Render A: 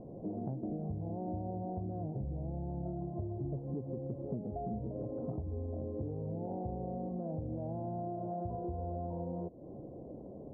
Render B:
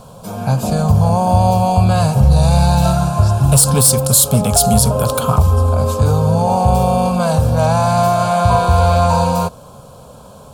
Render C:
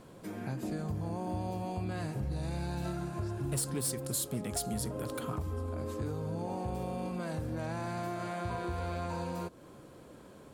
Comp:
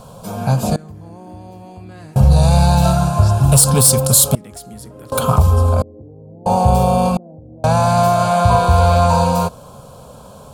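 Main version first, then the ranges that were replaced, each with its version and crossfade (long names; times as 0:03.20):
B
0:00.76–0:02.16: punch in from C
0:04.35–0:05.12: punch in from C
0:05.82–0:06.46: punch in from A
0:07.17–0:07.64: punch in from A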